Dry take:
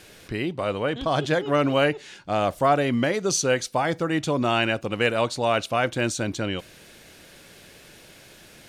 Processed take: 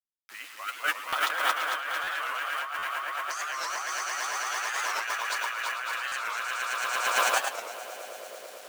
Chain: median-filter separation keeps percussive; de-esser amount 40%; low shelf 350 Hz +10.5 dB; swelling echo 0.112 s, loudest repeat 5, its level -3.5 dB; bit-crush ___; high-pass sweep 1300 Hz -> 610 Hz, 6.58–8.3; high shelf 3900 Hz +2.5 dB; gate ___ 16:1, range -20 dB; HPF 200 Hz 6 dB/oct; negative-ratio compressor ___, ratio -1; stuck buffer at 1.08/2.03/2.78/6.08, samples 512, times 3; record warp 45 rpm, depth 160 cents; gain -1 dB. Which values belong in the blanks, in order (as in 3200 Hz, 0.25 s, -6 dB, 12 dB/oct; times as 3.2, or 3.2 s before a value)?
6-bit, -22 dBFS, -30 dBFS